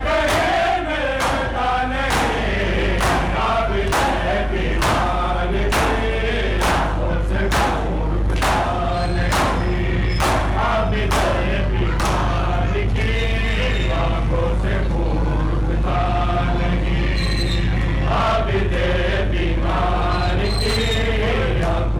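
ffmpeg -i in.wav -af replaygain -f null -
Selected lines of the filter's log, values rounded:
track_gain = +2.4 dB
track_peak = 0.147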